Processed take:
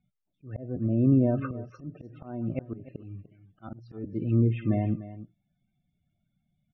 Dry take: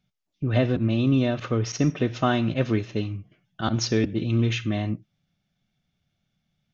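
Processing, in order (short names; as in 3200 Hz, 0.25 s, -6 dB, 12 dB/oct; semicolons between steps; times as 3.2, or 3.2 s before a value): loudest bins only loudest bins 32; LPF 2200 Hz 12 dB/oct; treble ducked by the level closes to 770 Hz, closed at -18.5 dBFS; auto swell 0.476 s; on a send: echo 0.297 s -15 dB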